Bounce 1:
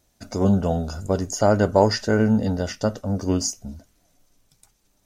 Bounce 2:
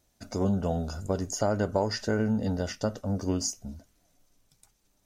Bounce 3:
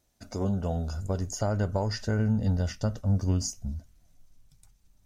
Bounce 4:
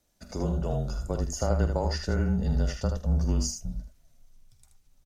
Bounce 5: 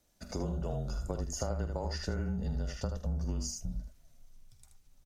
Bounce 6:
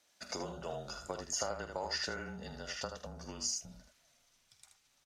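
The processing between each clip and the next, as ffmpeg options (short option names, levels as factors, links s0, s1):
-af "acompressor=threshold=0.112:ratio=3,volume=0.596"
-af "asubboost=boost=6:cutoff=150,volume=0.75"
-af "aecho=1:1:48|78:0.251|0.473,afreqshift=-29"
-af "acompressor=threshold=0.0251:ratio=4"
-af "bandpass=f=2700:t=q:w=0.54:csg=0,volume=2.37"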